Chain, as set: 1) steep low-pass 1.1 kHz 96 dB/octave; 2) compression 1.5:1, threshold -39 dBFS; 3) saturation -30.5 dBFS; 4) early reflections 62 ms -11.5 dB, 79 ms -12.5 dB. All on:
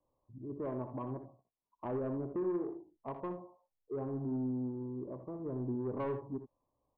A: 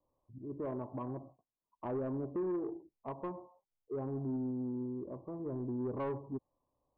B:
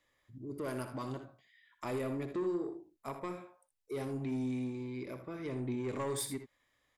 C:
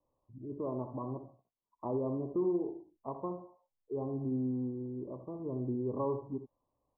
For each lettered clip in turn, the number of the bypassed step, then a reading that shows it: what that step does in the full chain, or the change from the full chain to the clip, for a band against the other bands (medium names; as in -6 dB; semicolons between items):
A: 4, echo-to-direct -9.0 dB to none; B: 1, 2 kHz band +10.5 dB; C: 3, distortion -16 dB